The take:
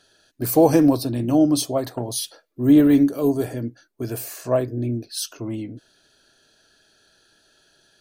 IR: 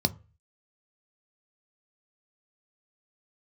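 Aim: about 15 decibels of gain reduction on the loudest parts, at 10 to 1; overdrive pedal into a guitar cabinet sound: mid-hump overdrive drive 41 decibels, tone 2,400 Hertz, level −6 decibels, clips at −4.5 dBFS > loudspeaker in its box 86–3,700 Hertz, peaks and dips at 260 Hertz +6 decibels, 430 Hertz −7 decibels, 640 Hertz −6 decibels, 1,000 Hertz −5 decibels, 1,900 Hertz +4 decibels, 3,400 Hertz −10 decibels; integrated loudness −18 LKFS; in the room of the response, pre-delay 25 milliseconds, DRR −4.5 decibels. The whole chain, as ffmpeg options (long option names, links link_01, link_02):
-filter_complex "[0:a]acompressor=threshold=-25dB:ratio=10,asplit=2[link_01][link_02];[1:a]atrim=start_sample=2205,adelay=25[link_03];[link_02][link_03]afir=irnorm=-1:irlink=0,volume=-4dB[link_04];[link_01][link_04]amix=inputs=2:normalize=0,asplit=2[link_05][link_06];[link_06]highpass=frequency=720:poles=1,volume=41dB,asoftclip=type=tanh:threshold=-4.5dB[link_07];[link_05][link_07]amix=inputs=2:normalize=0,lowpass=frequency=2400:poles=1,volume=-6dB,highpass=86,equalizer=frequency=260:width_type=q:width=4:gain=6,equalizer=frequency=430:width_type=q:width=4:gain=-7,equalizer=frequency=640:width_type=q:width=4:gain=-6,equalizer=frequency=1000:width_type=q:width=4:gain=-5,equalizer=frequency=1900:width_type=q:width=4:gain=4,equalizer=frequency=3400:width_type=q:width=4:gain=-10,lowpass=frequency=3700:width=0.5412,lowpass=frequency=3700:width=1.3066,volume=-6dB"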